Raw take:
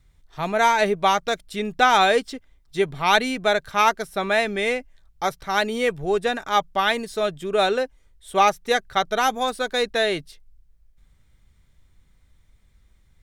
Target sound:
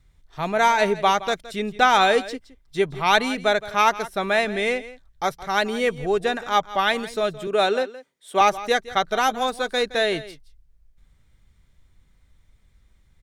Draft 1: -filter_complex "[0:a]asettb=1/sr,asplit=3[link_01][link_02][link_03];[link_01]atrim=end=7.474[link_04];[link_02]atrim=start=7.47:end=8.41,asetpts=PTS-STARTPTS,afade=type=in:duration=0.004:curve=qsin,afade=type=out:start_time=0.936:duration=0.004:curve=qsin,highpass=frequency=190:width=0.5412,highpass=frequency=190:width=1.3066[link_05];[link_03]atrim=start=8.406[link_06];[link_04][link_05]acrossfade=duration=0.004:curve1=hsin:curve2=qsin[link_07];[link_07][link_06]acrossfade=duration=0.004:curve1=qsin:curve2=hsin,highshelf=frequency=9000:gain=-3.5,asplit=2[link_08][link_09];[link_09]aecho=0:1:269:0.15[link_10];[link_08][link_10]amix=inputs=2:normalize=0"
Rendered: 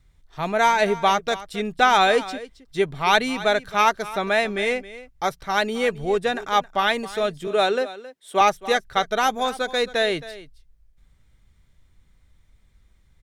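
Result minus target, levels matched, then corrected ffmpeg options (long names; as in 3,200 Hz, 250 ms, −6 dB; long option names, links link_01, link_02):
echo 101 ms late
-filter_complex "[0:a]asettb=1/sr,asplit=3[link_01][link_02][link_03];[link_01]atrim=end=7.474[link_04];[link_02]atrim=start=7.47:end=8.41,asetpts=PTS-STARTPTS,afade=type=in:duration=0.004:curve=qsin,afade=type=out:start_time=0.936:duration=0.004:curve=qsin,highpass=frequency=190:width=0.5412,highpass=frequency=190:width=1.3066[link_05];[link_03]atrim=start=8.406[link_06];[link_04][link_05]acrossfade=duration=0.004:curve1=hsin:curve2=qsin[link_07];[link_07][link_06]acrossfade=duration=0.004:curve1=qsin:curve2=hsin,highshelf=frequency=9000:gain=-3.5,asplit=2[link_08][link_09];[link_09]aecho=0:1:168:0.15[link_10];[link_08][link_10]amix=inputs=2:normalize=0"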